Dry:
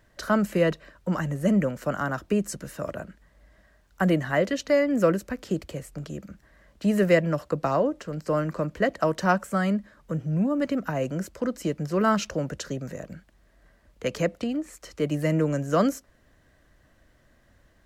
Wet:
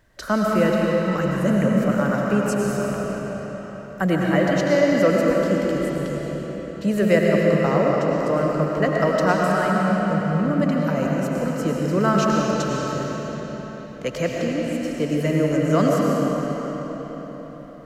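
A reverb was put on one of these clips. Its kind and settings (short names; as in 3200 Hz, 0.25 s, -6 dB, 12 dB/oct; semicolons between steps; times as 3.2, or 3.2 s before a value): digital reverb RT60 4.9 s, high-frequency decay 0.8×, pre-delay 65 ms, DRR -3 dB; gain +1 dB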